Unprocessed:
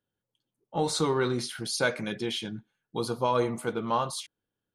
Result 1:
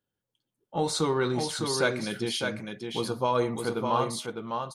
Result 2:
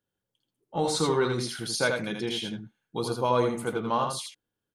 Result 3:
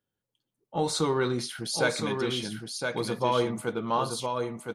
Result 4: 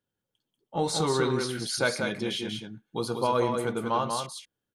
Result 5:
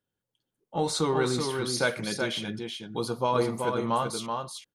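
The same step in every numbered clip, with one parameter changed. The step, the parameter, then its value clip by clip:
delay, time: 605 ms, 81 ms, 1014 ms, 188 ms, 379 ms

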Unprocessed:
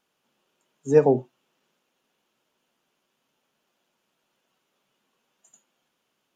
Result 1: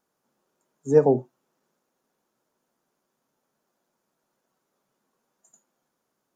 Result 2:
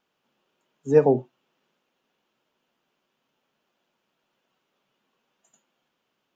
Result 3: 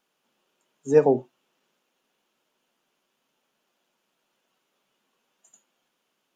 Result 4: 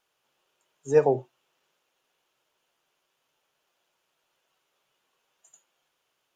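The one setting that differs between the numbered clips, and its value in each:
peaking EQ, frequency: 2.9 kHz, 10 kHz, 83 Hz, 220 Hz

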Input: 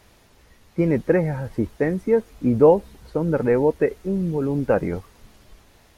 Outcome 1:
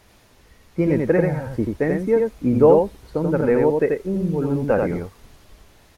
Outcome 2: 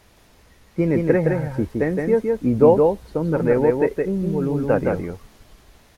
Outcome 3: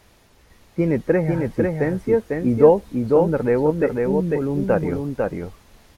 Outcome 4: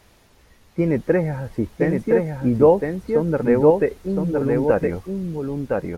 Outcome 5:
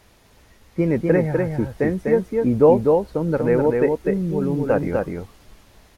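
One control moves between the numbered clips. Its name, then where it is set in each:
delay, time: 86 ms, 166 ms, 499 ms, 1014 ms, 249 ms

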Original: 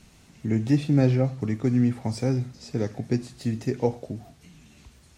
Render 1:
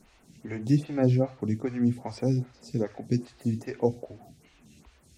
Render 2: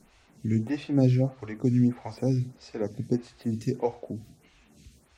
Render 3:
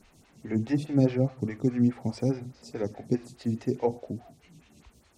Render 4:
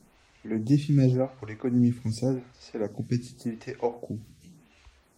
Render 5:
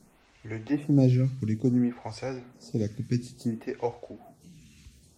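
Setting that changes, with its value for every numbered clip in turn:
lamp-driven phase shifter, rate: 2.5 Hz, 1.6 Hz, 4.8 Hz, 0.88 Hz, 0.58 Hz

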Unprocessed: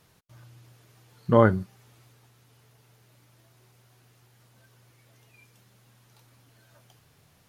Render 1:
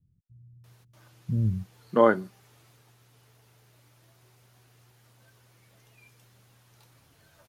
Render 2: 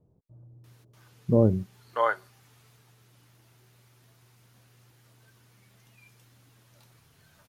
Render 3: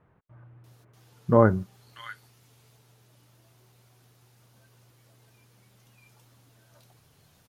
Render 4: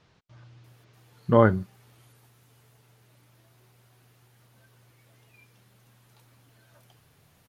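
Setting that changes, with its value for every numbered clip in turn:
bands offset in time, split: 200 Hz, 620 Hz, 1.9 kHz, 6 kHz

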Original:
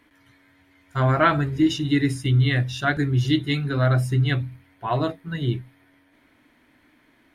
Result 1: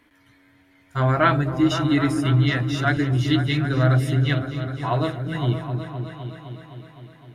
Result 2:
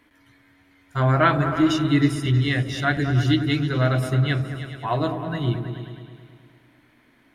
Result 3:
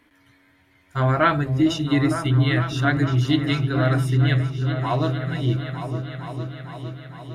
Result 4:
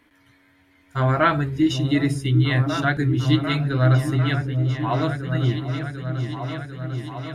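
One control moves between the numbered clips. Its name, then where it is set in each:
delay with an opening low-pass, time: 257 ms, 106 ms, 456 ms, 747 ms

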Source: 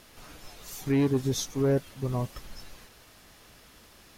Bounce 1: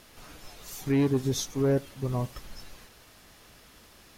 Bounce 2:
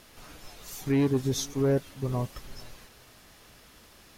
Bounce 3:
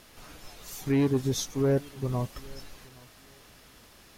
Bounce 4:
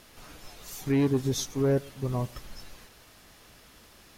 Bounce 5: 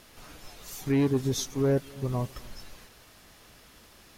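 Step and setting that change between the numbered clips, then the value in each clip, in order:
tape echo, time: 75 ms, 457 ms, 815 ms, 117 ms, 259 ms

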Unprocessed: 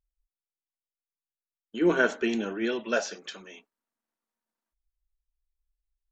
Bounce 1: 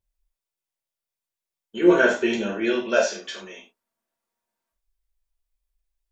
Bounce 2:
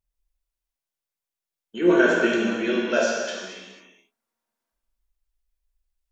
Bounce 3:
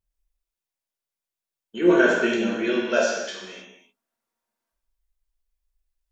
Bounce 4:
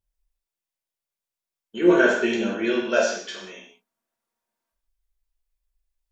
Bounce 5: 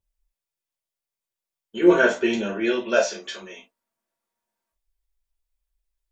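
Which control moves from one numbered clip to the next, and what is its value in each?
gated-style reverb, gate: 130 ms, 520 ms, 340 ms, 220 ms, 90 ms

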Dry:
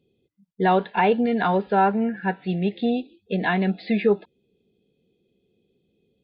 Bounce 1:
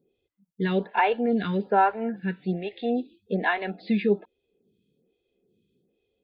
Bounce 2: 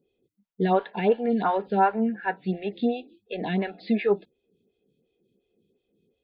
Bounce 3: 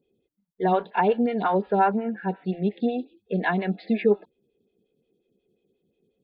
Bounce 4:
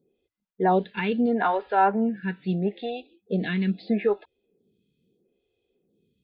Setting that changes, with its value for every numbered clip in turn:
lamp-driven phase shifter, rate: 1.2 Hz, 2.8 Hz, 5.6 Hz, 0.77 Hz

